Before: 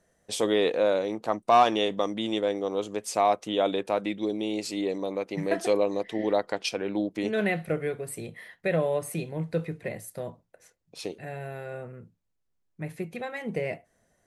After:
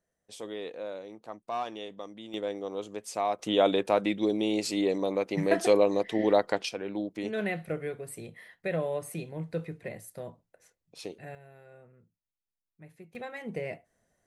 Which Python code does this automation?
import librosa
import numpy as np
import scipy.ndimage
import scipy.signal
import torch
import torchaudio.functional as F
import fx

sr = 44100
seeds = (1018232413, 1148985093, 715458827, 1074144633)

y = fx.gain(x, sr, db=fx.steps((0.0, -14.5), (2.34, -6.5), (3.39, 2.0), (6.65, -5.0), (11.35, -16.0), (13.15, -5.0)))